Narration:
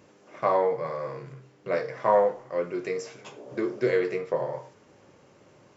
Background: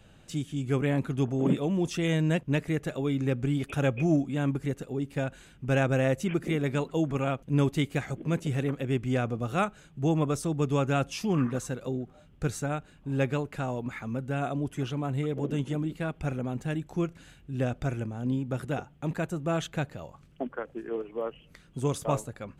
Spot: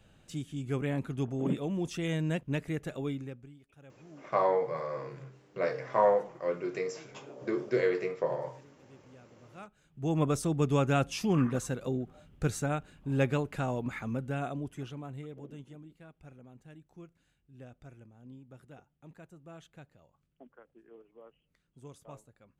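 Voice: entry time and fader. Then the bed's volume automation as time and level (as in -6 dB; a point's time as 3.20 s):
3.90 s, -3.5 dB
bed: 3.09 s -5.5 dB
3.60 s -29 dB
9.37 s -29 dB
10.23 s -0.5 dB
14.07 s -0.5 dB
15.94 s -21 dB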